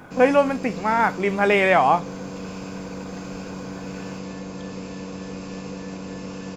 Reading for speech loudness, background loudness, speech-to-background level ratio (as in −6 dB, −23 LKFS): −19.5 LKFS, −34.5 LKFS, 15.0 dB